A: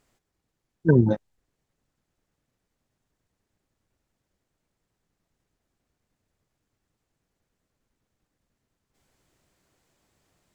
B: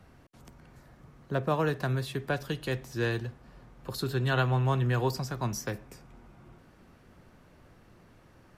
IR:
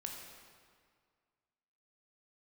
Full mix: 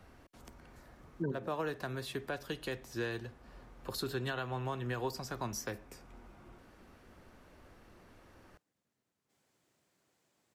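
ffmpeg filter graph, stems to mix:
-filter_complex "[0:a]highpass=140,adelay=350,volume=0.562[s0];[1:a]equalizer=f=140:t=o:w=0.85:g=-9,volume=1,asplit=2[s1][s2];[s2]apad=whole_len=480680[s3];[s0][s3]sidechaincompress=threshold=0.00631:ratio=8:attack=16:release=390[s4];[s4][s1]amix=inputs=2:normalize=0,alimiter=level_in=1.33:limit=0.0631:level=0:latency=1:release=445,volume=0.75"

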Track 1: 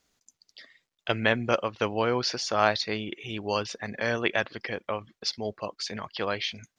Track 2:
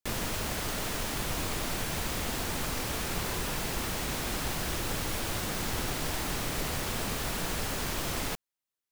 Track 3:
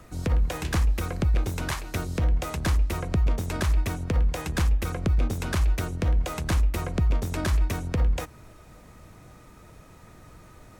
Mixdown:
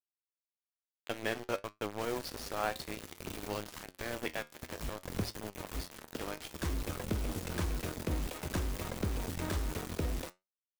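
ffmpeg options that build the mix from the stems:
-filter_complex "[0:a]lowshelf=f=95:g=7.5,volume=0.376,asplit=2[s0][s1];[1:a]adelay=1950,volume=0.251[s2];[2:a]acompressor=threshold=0.0794:ratio=6,adelay=2050,volume=0.562[s3];[s1]apad=whole_len=566490[s4];[s3][s4]sidechaincompress=threshold=0.00355:ratio=6:attack=5.7:release=114[s5];[s0][s2][s5]amix=inputs=3:normalize=0,aeval=exprs='val(0)*gte(abs(val(0)),0.0237)':c=same,equalizer=f=340:t=o:w=1.9:g=5,flanger=delay=9.3:depth=4.2:regen=69:speed=0.56:shape=triangular"

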